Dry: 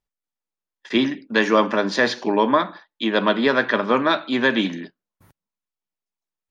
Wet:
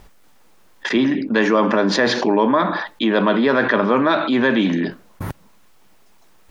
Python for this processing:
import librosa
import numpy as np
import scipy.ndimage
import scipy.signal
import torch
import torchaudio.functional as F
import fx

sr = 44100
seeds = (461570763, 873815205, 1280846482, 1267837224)

y = fx.high_shelf(x, sr, hz=2500.0, db=-9.0)
y = fx.env_flatten(y, sr, amount_pct=70)